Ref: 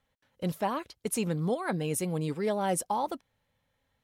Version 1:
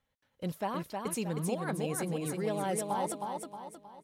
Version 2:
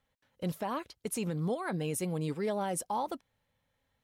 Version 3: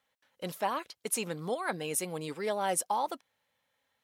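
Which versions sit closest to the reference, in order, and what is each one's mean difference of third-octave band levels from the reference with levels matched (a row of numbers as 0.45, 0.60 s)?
2, 3, 1; 1.0, 4.5, 6.0 dB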